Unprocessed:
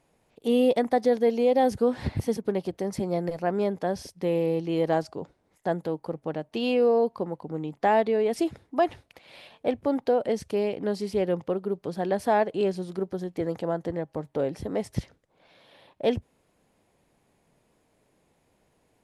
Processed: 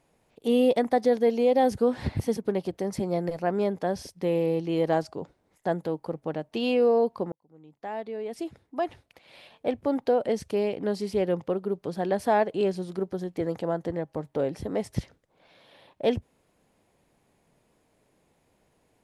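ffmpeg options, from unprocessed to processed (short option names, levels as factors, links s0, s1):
-filter_complex "[0:a]asplit=2[s0][s1];[s0]atrim=end=7.32,asetpts=PTS-STARTPTS,afade=t=out:st=7.316:d=0.004:c=hsin[s2];[s1]atrim=start=7.32,asetpts=PTS-STARTPTS,afade=t=in:d=2.78[s3];[s2][s3]concat=n=2:v=0:a=1"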